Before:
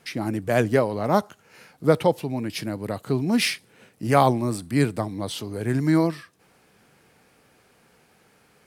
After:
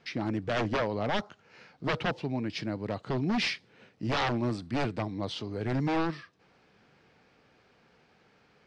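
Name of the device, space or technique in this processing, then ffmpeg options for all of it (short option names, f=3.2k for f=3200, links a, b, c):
synthesiser wavefolder: -af "aeval=exprs='0.119*(abs(mod(val(0)/0.119+3,4)-2)-1)':c=same,lowpass=f=5.3k:w=0.5412,lowpass=f=5.3k:w=1.3066,volume=-4dB"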